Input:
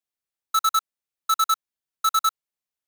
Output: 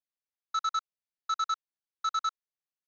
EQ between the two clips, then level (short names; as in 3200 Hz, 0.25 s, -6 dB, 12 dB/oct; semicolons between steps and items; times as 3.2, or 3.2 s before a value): rippled Chebyshev low-pass 6400 Hz, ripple 3 dB; -8.0 dB